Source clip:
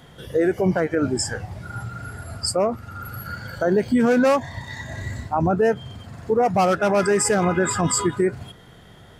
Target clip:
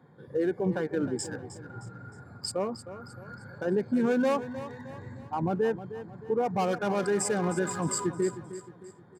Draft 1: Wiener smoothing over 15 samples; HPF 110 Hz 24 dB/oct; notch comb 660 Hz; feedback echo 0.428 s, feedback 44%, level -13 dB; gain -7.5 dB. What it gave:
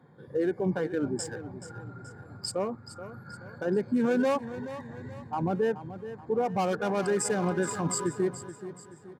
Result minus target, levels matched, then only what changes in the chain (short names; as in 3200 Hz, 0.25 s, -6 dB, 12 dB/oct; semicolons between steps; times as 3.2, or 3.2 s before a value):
echo 0.118 s late
change: feedback echo 0.31 s, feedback 44%, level -13 dB